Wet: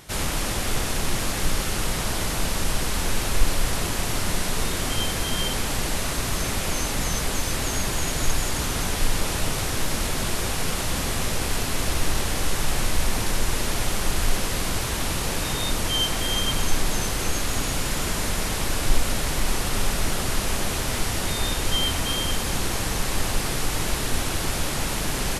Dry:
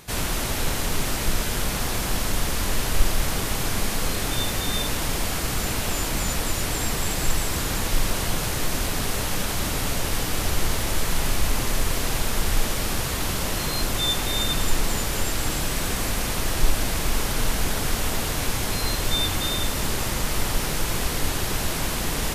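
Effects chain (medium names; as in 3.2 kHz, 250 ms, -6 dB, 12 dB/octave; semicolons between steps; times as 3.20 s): tape speed -12%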